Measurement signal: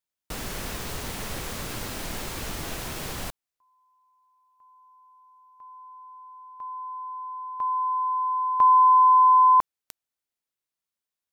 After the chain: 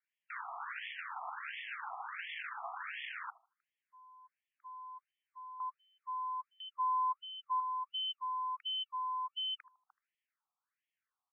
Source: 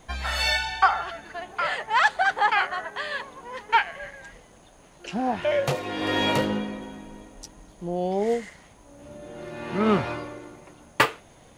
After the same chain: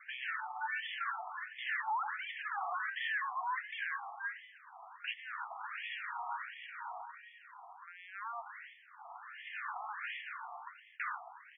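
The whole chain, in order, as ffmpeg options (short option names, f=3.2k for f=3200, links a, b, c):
-filter_complex "[0:a]adynamicequalizer=threshold=0.00631:dfrequency=160:dqfactor=1.1:tfrequency=160:tqfactor=1.1:attack=5:release=100:ratio=0.375:range=3.5:mode=boostabove:tftype=bell,areverse,acompressor=threshold=-27dB:ratio=12:attack=0.41:release=32:knee=6:detection=rms,areverse,alimiter=level_in=4.5dB:limit=-24dB:level=0:latency=1:release=30,volume=-4.5dB,adynamicsmooth=sensitivity=5.5:basefreq=3.7k,aeval=exprs='0.0376*sin(PI/2*2*val(0)/0.0376)':c=same,asplit=2[a][b];[b]adelay=78,lowpass=f=1.6k:p=1,volume=-19dB,asplit=2[c][d];[d]adelay=78,lowpass=f=1.6k:p=1,volume=0.32,asplit=2[e][f];[f]adelay=78,lowpass=f=1.6k:p=1,volume=0.32[g];[c][e][g]amix=inputs=3:normalize=0[h];[a][h]amix=inputs=2:normalize=0,afftfilt=real='re*between(b*sr/1024,920*pow(2500/920,0.5+0.5*sin(2*PI*1.4*pts/sr))/1.41,920*pow(2500/920,0.5+0.5*sin(2*PI*1.4*pts/sr))*1.41)':imag='im*between(b*sr/1024,920*pow(2500/920,0.5+0.5*sin(2*PI*1.4*pts/sr))/1.41,920*pow(2500/920,0.5+0.5*sin(2*PI*1.4*pts/sr))*1.41)':win_size=1024:overlap=0.75,volume=-1dB"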